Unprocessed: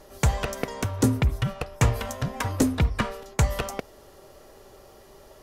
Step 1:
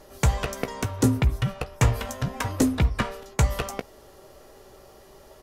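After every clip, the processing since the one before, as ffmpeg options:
ffmpeg -i in.wav -filter_complex "[0:a]asplit=2[link_01][link_02];[link_02]adelay=16,volume=-12dB[link_03];[link_01][link_03]amix=inputs=2:normalize=0" out.wav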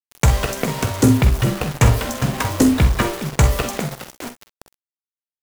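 ffmpeg -i in.wav -filter_complex "[0:a]asplit=2[link_01][link_02];[link_02]asplit=4[link_03][link_04][link_05][link_06];[link_03]adelay=411,afreqshift=87,volume=-13dB[link_07];[link_04]adelay=822,afreqshift=174,volume=-21.2dB[link_08];[link_05]adelay=1233,afreqshift=261,volume=-29.4dB[link_09];[link_06]adelay=1644,afreqshift=348,volume=-37.5dB[link_10];[link_07][link_08][link_09][link_10]amix=inputs=4:normalize=0[link_11];[link_01][link_11]amix=inputs=2:normalize=0,acrusher=bits=5:mix=0:aa=0.000001,asplit=2[link_12][link_13];[link_13]aecho=0:1:46|62:0.299|0.168[link_14];[link_12][link_14]amix=inputs=2:normalize=0,volume=6dB" out.wav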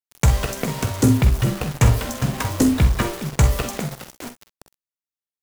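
ffmpeg -i in.wav -af "bass=frequency=250:gain=3,treble=frequency=4000:gain=2,volume=-4dB" out.wav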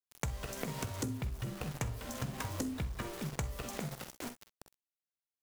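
ffmpeg -i in.wav -af "acompressor=threshold=-27dB:ratio=10,volume=-7.5dB" out.wav

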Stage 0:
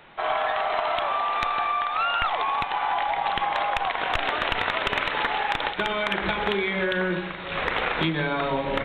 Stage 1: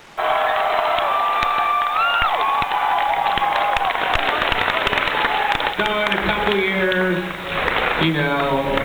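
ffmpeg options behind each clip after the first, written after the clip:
ffmpeg -i in.wav -af "acrusher=bits=7:mix=0:aa=0.5,volume=6.5dB" out.wav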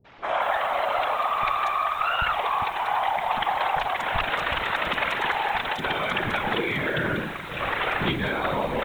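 ffmpeg -i in.wav -filter_complex "[0:a]afftfilt=real='hypot(re,im)*cos(2*PI*random(0))':imag='hypot(re,im)*sin(2*PI*random(1))':win_size=512:overlap=0.75,acrossover=split=340|4300[link_01][link_02][link_03];[link_02]adelay=50[link_04];[link_03]adelay=240[link_05];[link_01][link_04][link_05]amix=inputs=3:normalize=0" out.wav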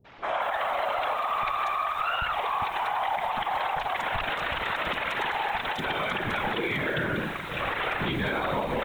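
ffmpeg -i in.wav -af "alimiter=limit=-19dB:level=0:latency=1:release=70" out.wav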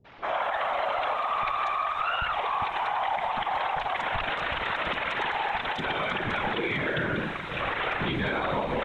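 ffmpeg -i in.wav -af "lowpass=5900" out.wav

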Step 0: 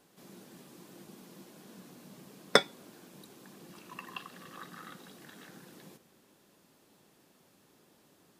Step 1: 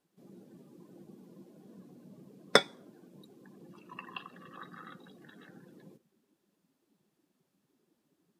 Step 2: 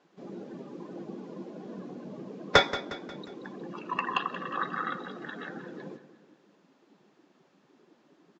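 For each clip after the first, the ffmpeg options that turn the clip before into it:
ffmpeg -i in.wav -af "afftdn=noise_reduction=16:noise_floor=-52" out.wav
ffmpeg -i in.wav -filter_complex "[0:a]asplit=2[link_01][link_02];[link_02]highpass=frequency=720:poles=1,volume=27dB,asoftclip=type=tanh:threshold=-4dB[link_03];[link_01][link_03]amix=inputs=2:normalize=0,lowpass=frequency=1300:poles=1,volume=-6dB,aecho=1:1:179|358|537|716|895:0.2|0.0958|0.046|0.0221|0.0106,aresample=16000,aresample=44100" out.wav

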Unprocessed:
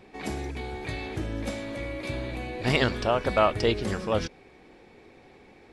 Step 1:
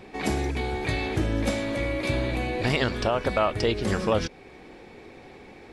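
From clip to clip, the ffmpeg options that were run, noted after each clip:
ffmpeg -i in.wav -af "alimiter=limit=-19dB:level=0:latency=1:release=389,volume=6.5dB" out.wav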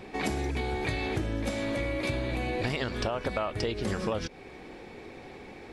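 ffmpeg -i in.wav -af "acompressor=threshold=-28dB:ratio=6,volume=1dB" out.wav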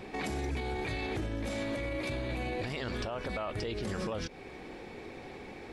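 ffmpeg -i in.wav -af "alimiter=level_in=3dB:limit=-24dB:level=0:latency=1:release=21,volume=-3dB" out.wav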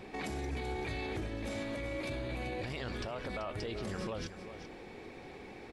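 ffmpeg -i in.wav -af "aecho=1:1:385:0.282,volume=-3.5dB" out.wav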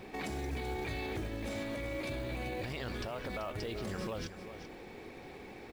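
ffmpeg -i in.wav -af "acrusher=bits=6:mode=log:mix=0:aa=0.000001" out.wav

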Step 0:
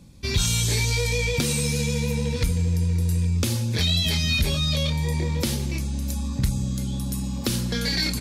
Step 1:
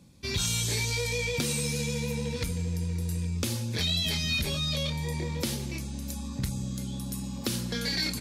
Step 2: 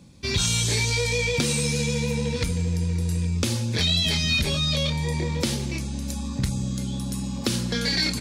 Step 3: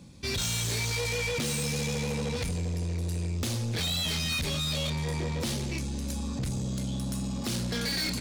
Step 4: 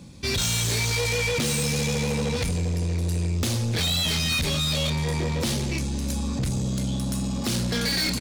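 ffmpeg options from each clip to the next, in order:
ffmpeg -i in.wav -af "highpass=frequency=120:poles=1,volume=-4.5dB" out.wav
ffmpeg -i in.wav -af "equalizer=frequency=13000:width_type=o:width=0.35:gain=-14,volume=6dB" out.wav
ffmpeg -i in.wav -af "asoftclip=type=tanh:threshold=-27.5dB" out.wav
ffmpeg -i in.wav -af "aecho=1:1:568:0.0708,volume=5.5dB" out.wav

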